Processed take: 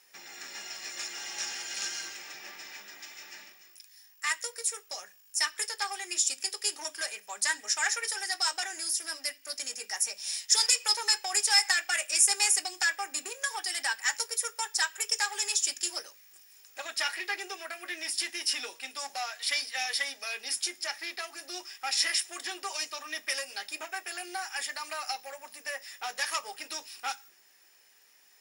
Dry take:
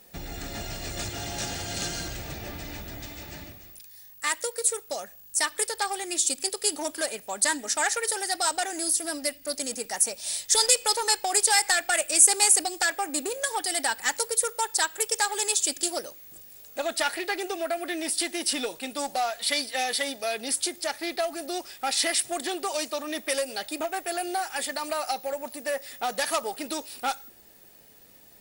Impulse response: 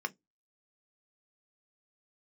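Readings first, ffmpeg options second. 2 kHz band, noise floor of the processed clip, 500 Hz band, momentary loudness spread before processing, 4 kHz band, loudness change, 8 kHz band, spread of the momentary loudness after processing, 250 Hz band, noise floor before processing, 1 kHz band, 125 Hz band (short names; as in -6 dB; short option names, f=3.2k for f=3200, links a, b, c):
-1.5 dB, -60 dBFS, -15.0 dB, 15 LU, -1.0 dB, -4.0 dB, -5.0 dB, 15 LU, -17.5 dB, -51 dBFS, -7.5 dB, n/a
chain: -filter_complex "[0:a]bandpass=f=5.9k:t=q:w=0.51:csg=0[a];[1:a]atrim=start_sample=2205[b];[a][b]afir=irnorm=-1:irlink=0"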